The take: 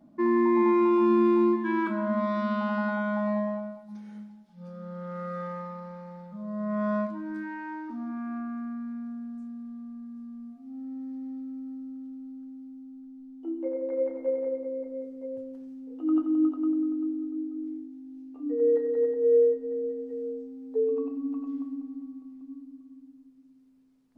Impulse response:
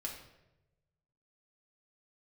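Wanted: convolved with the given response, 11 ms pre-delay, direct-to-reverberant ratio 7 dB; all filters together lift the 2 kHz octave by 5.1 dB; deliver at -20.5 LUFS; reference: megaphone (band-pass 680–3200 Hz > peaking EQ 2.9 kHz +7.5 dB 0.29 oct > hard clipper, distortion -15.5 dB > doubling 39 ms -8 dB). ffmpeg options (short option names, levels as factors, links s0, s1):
-filter_complex "[0:a]equalizer=f=2000:t=o:g=7.5,asplit=2[s0][s1];[1:a]atrim=start_sample=2205,adelay=11[s2];[s1][s2]afir=irnorm=-1:irlink=0,volume=0.473[s3];[s0][s3]amix=inputs=2:normalize=0,highpass=680,lowpass=3200,equalizer=f=2900:t=o:w=0.29:g=7.5,asoftclip=type=hard:threshold=0.0531,asplit=2[s4][s5];[s5]adelay=39,volume=0.398[s6];[s4][s6]amix=inputs=2:normalize=0,volume=4.47"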